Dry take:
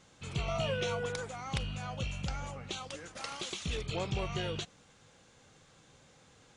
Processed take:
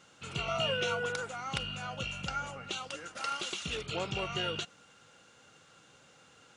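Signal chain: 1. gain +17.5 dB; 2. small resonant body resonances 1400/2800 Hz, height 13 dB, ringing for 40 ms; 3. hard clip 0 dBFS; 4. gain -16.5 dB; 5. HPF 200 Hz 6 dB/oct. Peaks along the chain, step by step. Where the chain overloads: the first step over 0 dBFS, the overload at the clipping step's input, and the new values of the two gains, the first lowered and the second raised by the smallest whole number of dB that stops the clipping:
-2.5, -1.5, -1.5, -18.0, -18.0 dBFS; no overload

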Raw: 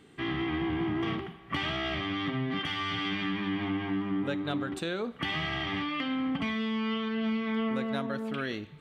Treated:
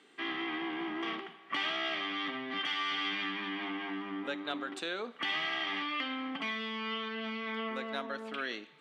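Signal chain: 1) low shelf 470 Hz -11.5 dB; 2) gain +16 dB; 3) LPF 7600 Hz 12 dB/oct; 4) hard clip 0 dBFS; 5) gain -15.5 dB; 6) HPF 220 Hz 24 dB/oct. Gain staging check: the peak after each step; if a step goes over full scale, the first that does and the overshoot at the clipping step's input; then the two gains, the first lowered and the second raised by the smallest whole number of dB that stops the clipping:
-21.0, -5.0, -5.0, -5.0, -20.5, -20.5 dBFS; no overload

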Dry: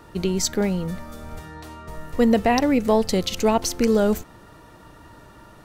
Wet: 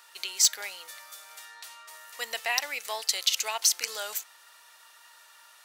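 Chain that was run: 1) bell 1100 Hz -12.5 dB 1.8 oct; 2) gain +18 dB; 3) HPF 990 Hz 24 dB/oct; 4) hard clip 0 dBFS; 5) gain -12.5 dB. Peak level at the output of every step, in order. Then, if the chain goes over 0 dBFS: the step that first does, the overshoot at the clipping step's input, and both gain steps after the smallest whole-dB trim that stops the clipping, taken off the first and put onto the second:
-8.5, +9.5, +8.0, 0.0, -12.5 dBFS; step 2, 8.0 dB; step 2 +10 dB, step 5 -4.5 dB

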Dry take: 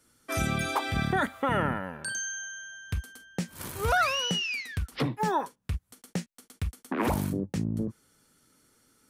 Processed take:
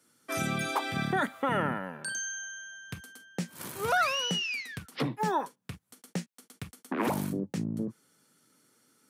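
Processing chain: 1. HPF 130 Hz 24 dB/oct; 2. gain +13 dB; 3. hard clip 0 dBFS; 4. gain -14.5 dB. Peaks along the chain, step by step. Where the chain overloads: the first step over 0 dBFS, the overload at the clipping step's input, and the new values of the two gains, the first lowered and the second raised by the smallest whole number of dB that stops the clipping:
-14.5, -1.5, -1.5, -16.0 dBFS; no overload

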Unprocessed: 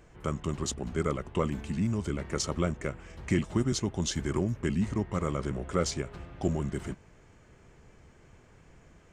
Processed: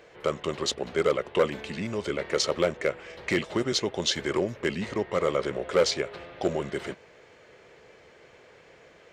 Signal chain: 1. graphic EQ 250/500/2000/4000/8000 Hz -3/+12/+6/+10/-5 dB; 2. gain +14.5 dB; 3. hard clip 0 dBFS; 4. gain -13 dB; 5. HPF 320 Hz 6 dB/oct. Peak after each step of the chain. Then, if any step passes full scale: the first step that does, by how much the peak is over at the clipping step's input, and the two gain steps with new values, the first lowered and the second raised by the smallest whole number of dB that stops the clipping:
-7.0, +7.5, 0.0, -13.0, -9.5 dBFS; step 2, 7.5 dB; step 2 +6.5 dB, step 4 -5 dB

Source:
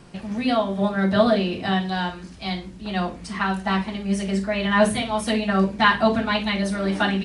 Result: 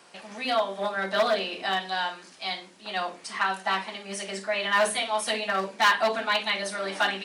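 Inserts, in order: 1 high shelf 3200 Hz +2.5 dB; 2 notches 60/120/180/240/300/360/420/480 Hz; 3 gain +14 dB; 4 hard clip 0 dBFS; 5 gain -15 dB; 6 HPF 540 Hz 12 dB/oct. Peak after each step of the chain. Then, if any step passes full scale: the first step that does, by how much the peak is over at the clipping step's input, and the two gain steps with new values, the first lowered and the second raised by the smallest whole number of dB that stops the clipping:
-5.0, -5.0, +9.0, 0.0, -15.0, -10.5 dBFS; step 3, 9.0 dB; step 3 +5 dB, step 5 -6 dB

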